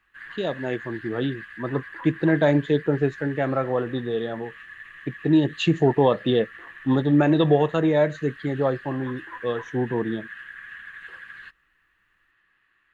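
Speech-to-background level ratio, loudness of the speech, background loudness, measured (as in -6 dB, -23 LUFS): 17.0 dB, -23.5 LUFS, -40.5 LUFS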